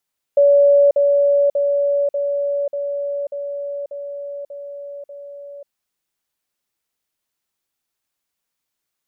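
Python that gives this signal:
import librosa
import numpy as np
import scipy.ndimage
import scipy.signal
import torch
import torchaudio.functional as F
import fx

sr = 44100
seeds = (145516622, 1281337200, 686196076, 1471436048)

y = fx.level_ladder(sr, hz=569.0, from_db=-8.5, step_db=-3.0, steps=9, dwell_s=0.54, gap_s=0.05)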